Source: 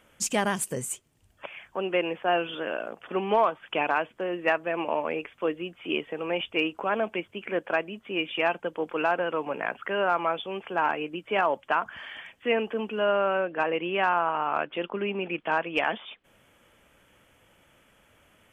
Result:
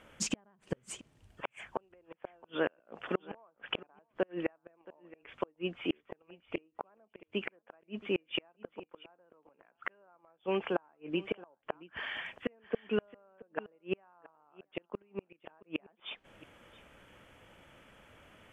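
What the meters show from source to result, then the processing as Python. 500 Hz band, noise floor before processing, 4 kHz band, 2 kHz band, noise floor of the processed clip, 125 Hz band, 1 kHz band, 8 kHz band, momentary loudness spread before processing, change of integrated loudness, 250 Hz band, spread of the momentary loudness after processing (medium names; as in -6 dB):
-11.5 dB, -63 dBFS, -8.5 dB, -13.5 dB, -77 dBFS, -6.5 dB, -19.0 dB, no reading, 8 LU, -11.5 dB, -7.0 dB, 23 LU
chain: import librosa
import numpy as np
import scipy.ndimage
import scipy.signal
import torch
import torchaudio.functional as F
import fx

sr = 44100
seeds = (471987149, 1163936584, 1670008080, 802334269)

p1 = fx.quant_companded(x, sr, bits=8)
p2 = fx.high_shelf(p1, sr, hz=6100.0, db=-11.5)
p3 = fx.env_lowpass_down(p2, sr, base_hz=1300.0, full_db=-23.5)
p4 = fx.gate_flip(p3, sr, shuts_db=-22.0, range_db=-40)
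p5 = p4 + fx.echo_single(p4, sr, ms=673, db=-20.0, dry=0)
y = p5 * librosa.db_to_amplitude(3.0)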